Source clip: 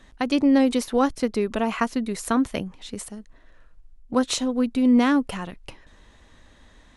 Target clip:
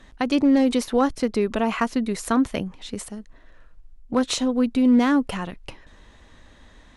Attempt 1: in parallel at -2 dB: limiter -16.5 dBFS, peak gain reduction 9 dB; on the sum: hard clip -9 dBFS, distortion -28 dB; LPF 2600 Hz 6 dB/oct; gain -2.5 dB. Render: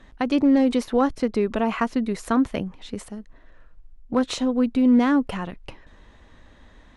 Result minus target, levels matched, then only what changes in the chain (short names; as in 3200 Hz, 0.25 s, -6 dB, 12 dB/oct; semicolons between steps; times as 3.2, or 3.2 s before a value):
8000 Hz band -6.5 dB
change: LPF 8100 Hz 6 dB/oct